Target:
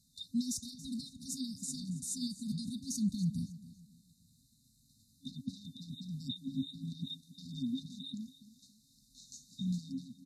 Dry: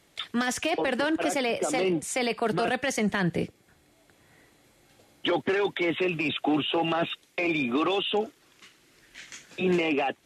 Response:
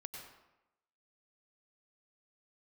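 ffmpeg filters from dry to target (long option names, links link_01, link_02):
-filter_complex "[0:a]asettb=1/sr,asplit=3[link_01][link_02][link_03];[link_01]atrim=end=6.314[link_04];[link_02]atrim=start=6.31:end=7.54,asetpts=PTS-STARTPTS,afade=type=in:duration=0.004:curve=qsin,afade=type=out:start_time=1.226:duration=0.004:curve=qsin,equalizer=frequency=290:width_type=o:width=0.26:gain=11.5[link_05];[link_03]atrim=start=7.536[link_06];[link_04][link_05]acrossfade=duration=0.004:curve1=hsin:curve2=qsin[link_07];[link_07][link_06]acrossfade=duration=0.004:curve1=qsin:curve2=hsin,aecho=1:1:279|558|837:0.15|0.0509|0.0173,afftfilt=real='re*(1-between(b*sr/4096,270,3600))':imag='im*(1-between(b*sr/4096,270,3600))':win_size=4096:overlap=0.75,volume=-4.5dB"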